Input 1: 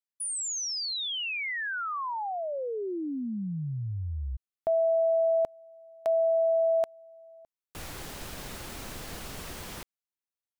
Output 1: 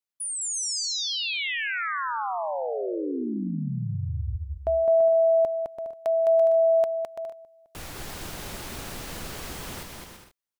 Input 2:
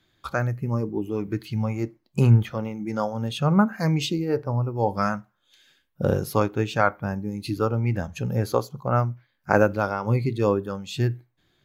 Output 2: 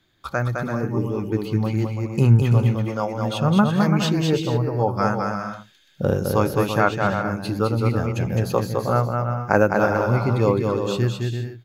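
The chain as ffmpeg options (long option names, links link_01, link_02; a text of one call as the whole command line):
ffmpeg -i in.wav -af "aecho=1:1:210|336|411.6|457|484.2:0.631|0.398|0.251|0.158|0.1,volume=1.5dB" out.wav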